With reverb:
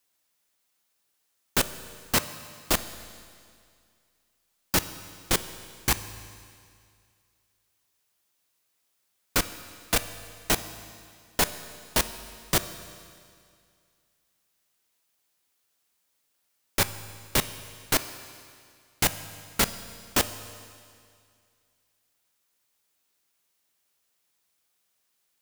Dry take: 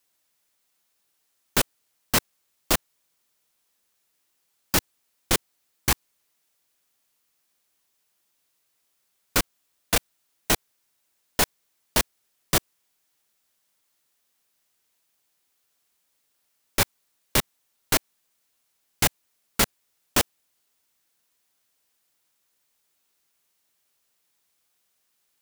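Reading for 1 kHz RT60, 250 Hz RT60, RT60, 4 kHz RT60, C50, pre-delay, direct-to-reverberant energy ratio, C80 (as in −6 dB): 2.2 s, 2.2 s, 2.2 s, 2.2 s, 13.0 dB, 9 ms, 11.5 dB, 14.0 dB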